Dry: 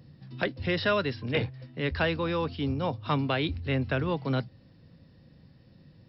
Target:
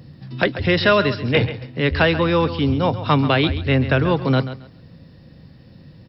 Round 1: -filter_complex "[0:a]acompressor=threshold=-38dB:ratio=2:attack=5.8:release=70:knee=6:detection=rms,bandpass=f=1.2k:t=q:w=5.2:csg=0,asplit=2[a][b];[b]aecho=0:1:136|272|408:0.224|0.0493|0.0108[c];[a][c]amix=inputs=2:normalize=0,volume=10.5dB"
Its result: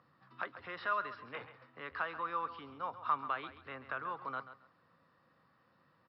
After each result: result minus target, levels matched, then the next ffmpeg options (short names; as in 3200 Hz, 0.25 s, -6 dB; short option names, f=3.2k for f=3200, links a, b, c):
compressor: peak gain reduction +9.5 dB; 1000 Hz band +8.0 dB
-filter_complex "[0:a]bandpass=f=1.2k:t=q:w=5.2:csg=0,asplit=2[a][b];[b]aecho=0:1:136|272|408:0.224|0.0493|0.0108[c];[a][c]amix=inputs=2:normalize=0,volume=10.5dB"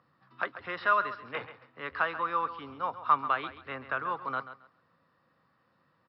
1000 Hz band +8.0 dB
-filter_complex "[0:a]asplit=2[a][b];[b]aecho=0:1:136|272|408:0.224|0.0493|0.0108[c];[a][c]amix=inputs=2:normalize=0,volume=10.5dB"